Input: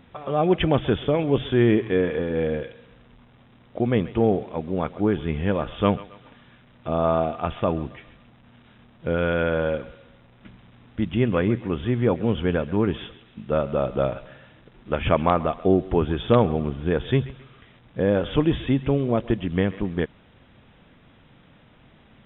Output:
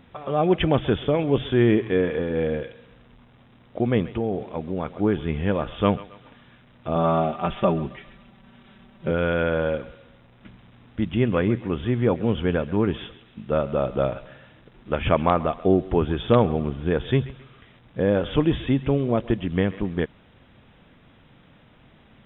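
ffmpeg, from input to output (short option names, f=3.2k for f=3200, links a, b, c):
-filter_complex "[0:a]asettb=1/sr,asplit=3[a][b][c];[a]atrim=end=4.084[d];[b]atrim=start=4.08:end=4.99,asetpts=PTS-STARTPTS,afade=t=in:d=0.004:c=qsin,afade=t=out:st=0.906:d=0.004:c=qsin,acompressor=threshold=-22dB:ratio=3:attack=3.2:release=140:knee=1:detection=peak[e];[c]atrim=start=4.986[f];[d][e]acrossfade=d=0.004:c1=hsin:c2=qsin[g];[g][f]acrossfade=d=0.004:c1=qsin:c2=hsin,asettb=1/sr,asplit=3[h][i][j];[h]atrim=end=6.954[k];[i]atrim=start=6.95:end=9.11,asetpts=PTS-STARTPTS,afade=t=in:d=0.004:c=qsin,afade=t=out:st=2.156:d=0.004:c=qsin,aecho=1:1:5.2:0.83,atrim=end_sample=95256[l];[j]atrim=start=9.106[m];[k][l]acrossfade=d=0.004:c1=hsin:c2=qsin[n];[n][m]acrossfade=d=0.004:c1=qsin:c2=hsin"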